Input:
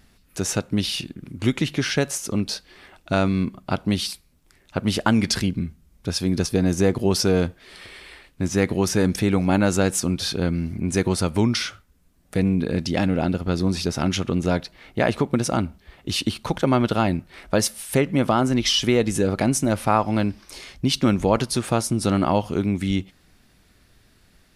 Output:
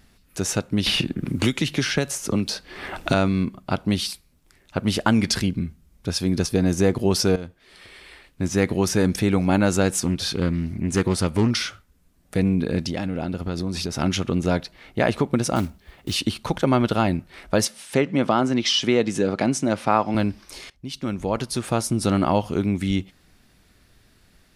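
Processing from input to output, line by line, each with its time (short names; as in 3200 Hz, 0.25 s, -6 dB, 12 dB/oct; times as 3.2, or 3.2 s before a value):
0.86–3.14 three-band squash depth 100%
7.36–8.75 fade in equal-power, from -15 dB
9.94–11.51 Doppler distortion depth 0.26 ms
12.86–13.99 compressor, threshold -22 dBFS
15.56–16.16 block floating point 5-bit
17.65–20.15 BPF 150–6700 Hz
20.7–21.95 fade in linear, from -19.5 dB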